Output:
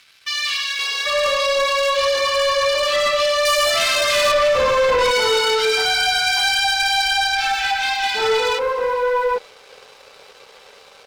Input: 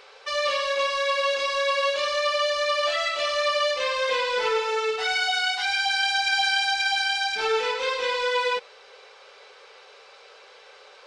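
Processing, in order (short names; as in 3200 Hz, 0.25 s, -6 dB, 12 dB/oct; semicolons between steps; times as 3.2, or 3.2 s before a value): one-sided clip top -21.5 dBFS, bottom -17.5 dBFS; 3.45–4.32 sample leveller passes 3; bands offset in time highs, lows 0.79 s, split 1600 Hz; sample leveller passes 2; gain +1.5 dB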